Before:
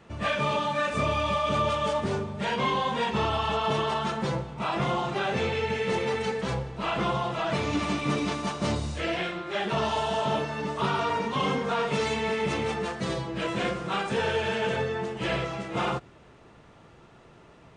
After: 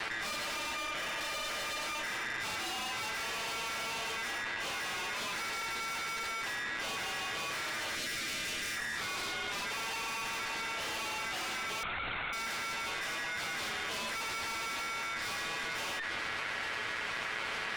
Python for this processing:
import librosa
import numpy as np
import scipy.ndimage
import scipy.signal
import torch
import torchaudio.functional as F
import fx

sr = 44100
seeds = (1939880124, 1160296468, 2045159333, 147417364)

y = fx.lower_of_two(x, sr, delay_ms=8.8)
y = fx.ellip_lowpass(y, sr, hz=1700.0, order=4, stop_db=40, at=(0.76, 1.21))
y = y * np.sin(2.0 * np.pi * 1800.0 * np.arange(len(y)) / sr)
y = fx.tube_stage(y, sr, drive_db=40.0, bias=0.65)
y = fx.peak_eq(y, sr, hz=910.0, db=-14.0, octaves=1.3, at=(7.95, 8.77))
y = fx.lpc_vocoder(y, sr, seeds[0], excitation='whisper', order=10, at=(11.83, 12.33))
y = fx.low_shelf(y, sr, hz=200.0, db=-4.5)
y = fx.env_flatten(y, sr, amount_pct=100)
y = F.gain(torch.from_numpy(y), 4.0).numpy()